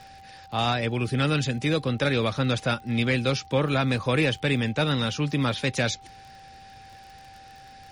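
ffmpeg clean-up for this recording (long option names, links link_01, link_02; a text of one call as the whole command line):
ffmpeg -i in.wav -af "adeclick=threshold=4,bandreject=frequency=780:width=30" out.wav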